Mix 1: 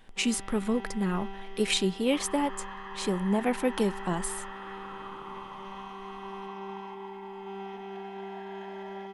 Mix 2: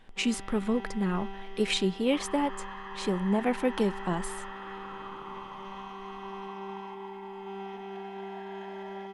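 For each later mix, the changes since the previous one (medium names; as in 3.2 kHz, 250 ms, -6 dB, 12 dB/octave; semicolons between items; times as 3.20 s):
speech: add treble shelf 8.1 kHz -12 dB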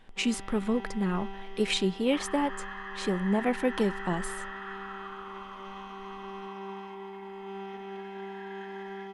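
second sound: add resonant high-pass 1.5 kHz, resonance Q 2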